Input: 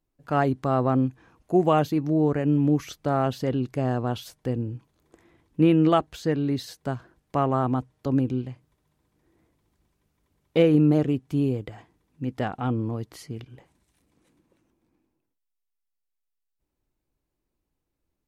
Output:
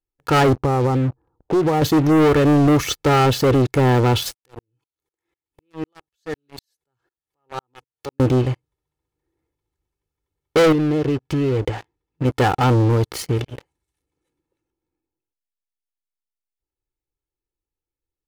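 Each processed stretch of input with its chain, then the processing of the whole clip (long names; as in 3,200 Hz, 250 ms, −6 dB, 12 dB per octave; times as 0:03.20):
0:00.56–0:01.82: low-pass filter 1,100 Hz 24 dB per octave + low-shelf EQ 170 Hz +4.5 dB + downward compressor 10 to 1, threshold −27 dBFS
0:04.34–0:08.20: spectral tilt +2 dB per octave + downward compressor 2 to 1, threshold −48 dBFS + tremolo with a ramp in dB swelling 4 Hz, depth 31 dB
0:10.72–0:12.25: low-pass filter 5,800 Hz + downward compressor, threshold −31 dBFS
whole clip: comb filter 2.3 ms, depth 68%; leveller curve on the samples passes 5; level −3 dB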